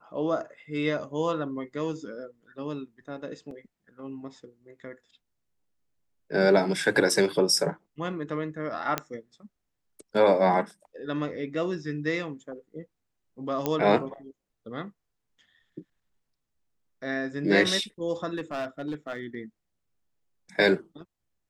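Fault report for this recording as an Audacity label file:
3.510000	3.510000	dropout 2.1 ms
8.980000	8.980000	pop -10 dBFS
13.660000	13.660000	pop -12 dBFS
18.350000	19.350000	clipped -27 dBFS

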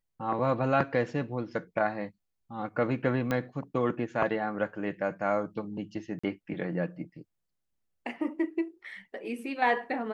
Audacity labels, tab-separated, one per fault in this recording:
3.310000	3.310000	pop -16 dBFS
6.190000	6.240000	dropout 45 ms

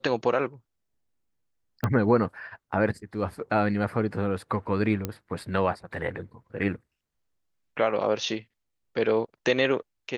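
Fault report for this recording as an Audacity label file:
1.840000	1.840000	pop -13 dBFS
5.050000	5.050000	pop -14 dBFS

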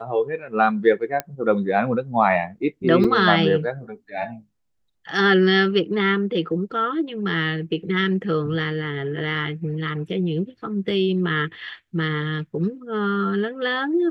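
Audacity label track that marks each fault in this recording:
1.200000	1.200000	pop -10 dBFS
3.040000	3.040000	dropout 4.2 ms

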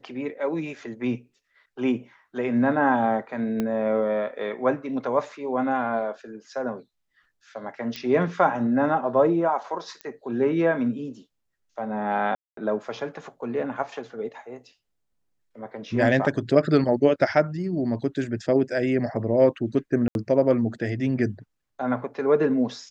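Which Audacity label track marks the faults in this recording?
3.600000	3.600000	pop -14 dBFS
7.960000	7.960000	pop -18 dBFS
10.010000	10.010000	pop -21 dBFS
12.350000	12.570000	dropout 223 ms
20.080000	20.150000	dropout 71 ms

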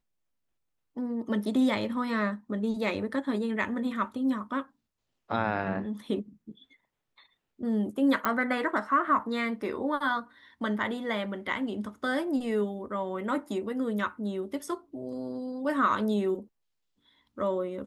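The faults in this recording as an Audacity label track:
8.250000	8.250000	pop -13 dBFS

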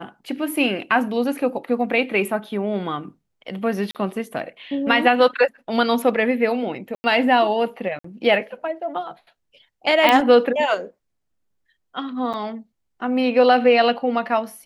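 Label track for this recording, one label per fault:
3.910000	3.950000	dropout 38 ms
6.950000	7.040000	dropout 90 ms
7.990000	8.040000	dropout 54 ms
10.090000	10.090000	pop -3 dBFS
12.330000	12.340000	dropout 7.4 ms

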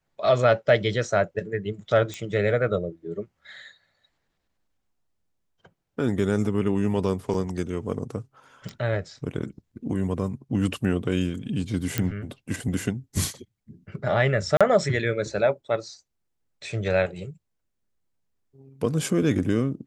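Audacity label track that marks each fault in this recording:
2.140000	2.140000	pop -19 dBFS
7.340000	7.340000	dropout 2.8 ms
8.690000	8.690000	pop -24 dBFS
11.980000	11.980000	pop -8 dBFS
14.570000	14.610000	dropout 36 ms

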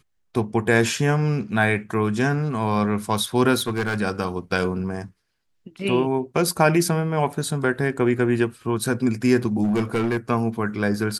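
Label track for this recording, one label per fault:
3.580000	4.010000	clipped -19.5 dBFS
9.630000	10.170000	clipped -17.5 dBFS

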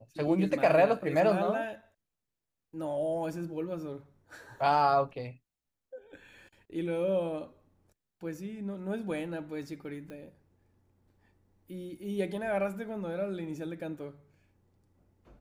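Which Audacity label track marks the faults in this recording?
10.100000	10.100000	pop -32 dBFS

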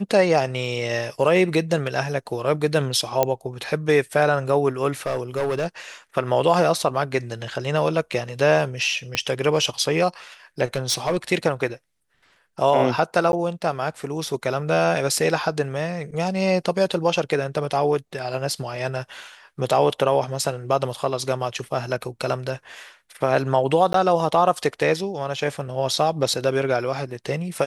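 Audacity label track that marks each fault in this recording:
3.230000	3.230000	pop -5 dBFS
5.060000	5.670000	clipped -19 dBFS
9.150000	9.150000	pop -7 dBFS
10.740000	11.170000	clipped -16.5 dBFS
13.320000	13.330000	dropout 11 ms
23.930000	23.940000	dropout 13 ms

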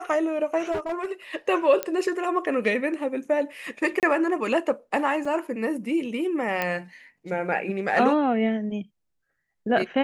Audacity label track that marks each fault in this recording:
0.710000	1.120000	clipped -24 dBFS
1.830000	1.830000	pop -10 dBFS
4.000000	4.030000	dropout 28 ms
5.250000	5.250000	dropout 4.1 ms
6.620000	6.620000	pop -12 dBFS

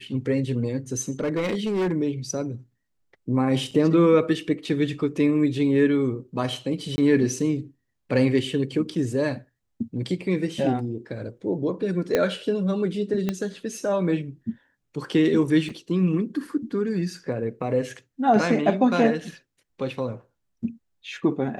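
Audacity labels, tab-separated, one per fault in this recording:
1.200000	1.920000	clipped -20.5 dBFS
3.710000	3.720000	dropout 5.2 ms
6.960000	6.980000	dropout 20 ms
12.150000	12.150000	pop -8 dBFS
13.290000	13.290000	pop -12 dBFS
15.690000	15.690000	dropout 4.7 ms

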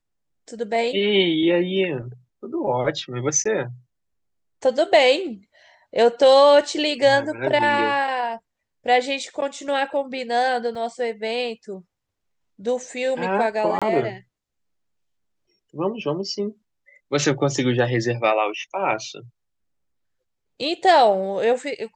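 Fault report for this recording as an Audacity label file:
3.440000	3.450000	dropout
10.750000	10.750000	dropout 4.2 ms
13.790000	13.820000	dropout 26 ms

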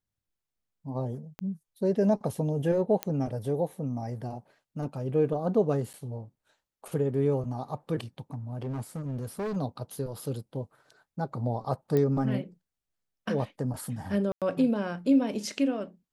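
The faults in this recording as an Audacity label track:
1.390000	1.390000	pop -23 dBFS
3.030000	3.030000	pop -13 dBFS
5.930000	5.940000	dropout 8.6 ms
8.340000	9.570000	clipped -29.5 dBFS
11.970000	11.970000	pop -16 dBFS
14.320000	14.420000	dropout 97 ms

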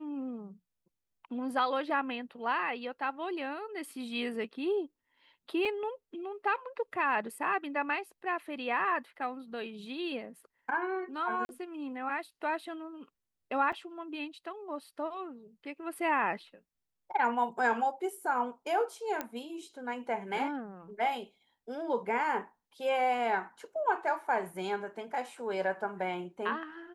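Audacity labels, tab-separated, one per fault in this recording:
5.650000	5.650000	dropout 4.4 ms
11.450000	11.490000	dropout 41 ms
13.720000	13.730000	dropout 5.5 ms
19.210000	19.210000	pop -18 dBFS

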